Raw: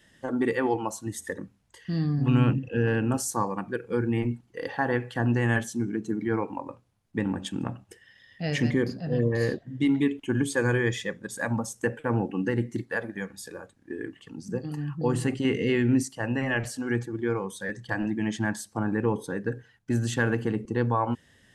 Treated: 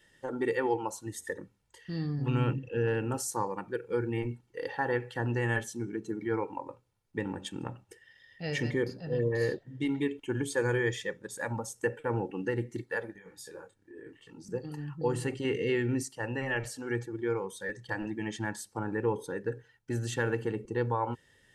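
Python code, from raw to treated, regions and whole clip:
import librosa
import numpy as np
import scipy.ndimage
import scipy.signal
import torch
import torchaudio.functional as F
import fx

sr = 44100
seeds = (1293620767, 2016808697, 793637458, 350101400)

y = fx.chain(x, sr, fx.over_compress(threshold_db=-37.0, ratio=-0.5),
    fx.detune_double(cents=25), at=(13.13, 14.45))
y = fx.peak_eq(y, sr, hz=76.0, db=-6.5, octaves=0.79)
y = y + 0.49 * np.pad(y, (int(2.2 * sr / 1000.0), 0))[:len(y)]
y = y * librosa.db_to_amplitude(-5.0)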